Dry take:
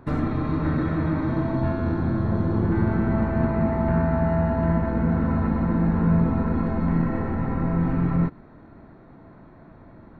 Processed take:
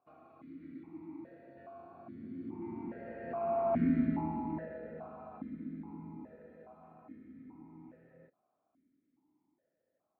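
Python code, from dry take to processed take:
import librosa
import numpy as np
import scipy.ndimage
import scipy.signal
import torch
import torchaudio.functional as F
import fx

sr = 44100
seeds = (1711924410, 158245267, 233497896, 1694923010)

y = fx.doppler_pass(x, sr, speed_mps=13, closest_m=3.9, pass_at_s=3.94)
y = fx.vowel_held(y, sr, hz=2.4)
y = F.gain(torch.from_numpy(y), 5.0).numpy()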